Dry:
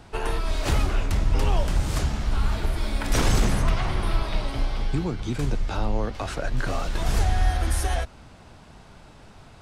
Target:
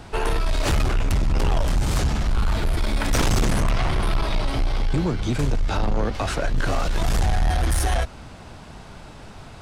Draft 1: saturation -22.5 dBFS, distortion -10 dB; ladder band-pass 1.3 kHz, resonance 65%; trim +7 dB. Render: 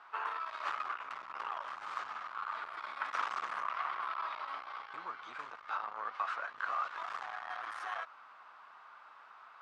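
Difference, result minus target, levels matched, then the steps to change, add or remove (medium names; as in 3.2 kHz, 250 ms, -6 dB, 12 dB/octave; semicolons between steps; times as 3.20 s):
1 kHz band +8.5 dB
remove: ladder band-pass 1.3 kHz, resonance 65%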